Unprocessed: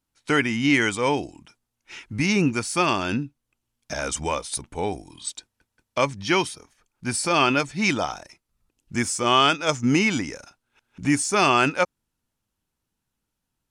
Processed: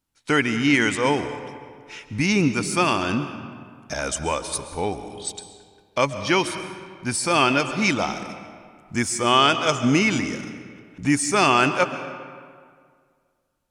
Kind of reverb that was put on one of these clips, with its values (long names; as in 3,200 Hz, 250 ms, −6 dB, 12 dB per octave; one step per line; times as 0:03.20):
comb and all-pass reverb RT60 2 s, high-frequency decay 0.65×, pre-delay 95 ms, DRR 10 dB
level +1 dB